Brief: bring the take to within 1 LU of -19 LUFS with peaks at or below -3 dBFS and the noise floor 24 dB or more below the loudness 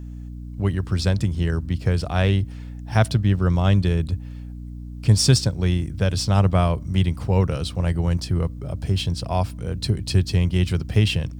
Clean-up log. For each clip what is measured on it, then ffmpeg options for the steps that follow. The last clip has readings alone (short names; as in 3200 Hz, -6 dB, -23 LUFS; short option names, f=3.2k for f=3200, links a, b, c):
hum 60 Hz; harmonics up to 300 Hz; hum level -32 dBFS; loudness -22.0 LUFS; peak -3.0 dBFS; loudness target -19.0 LUFS
-> -af "bandreject=f=60:t=h:w=4,bandreject=f=120:t=h:w=4,bandreject=f=180:t=h:w=4,bandreject=f=240:t=h:w=4,bandreject=f=300:t=h:w=4"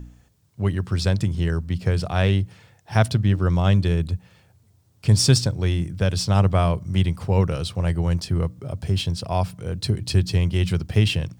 hum none; loudness -22.5 LUFS; peak -3.5 dBFS; loudness target -19.0 LUFS
-> -af "volume=3.5dB,alimiter=limit=-3dB:level=0:latency=1"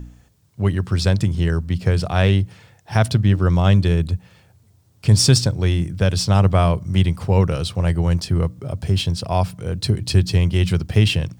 loudness -19.0 LUFS; peak -3.0 dBFS; noise floor -56 dBFS